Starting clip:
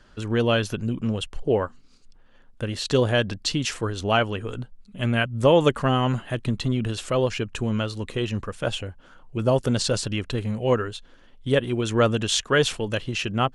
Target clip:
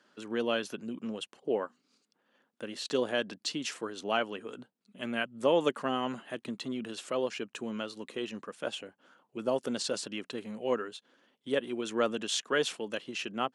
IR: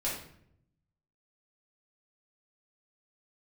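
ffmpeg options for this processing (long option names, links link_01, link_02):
-af "highpass=frequency=210:width=0.5412,highpass=frequency=210:width=1.3066,volume=-8.5dB"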